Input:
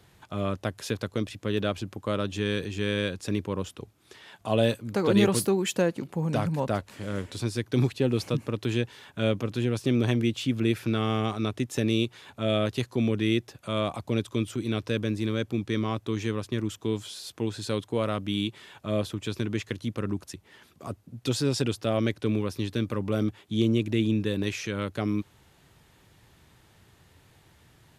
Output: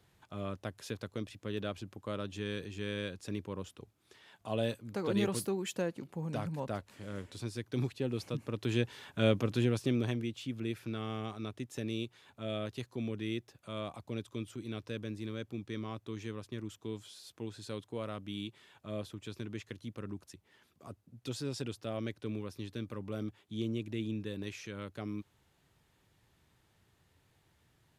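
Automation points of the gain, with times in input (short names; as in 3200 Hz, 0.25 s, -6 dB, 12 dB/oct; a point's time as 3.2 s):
8.32 s -10 dB
8.92 s -2 dB
9.62 s -2 dB
10.28 s -12 dB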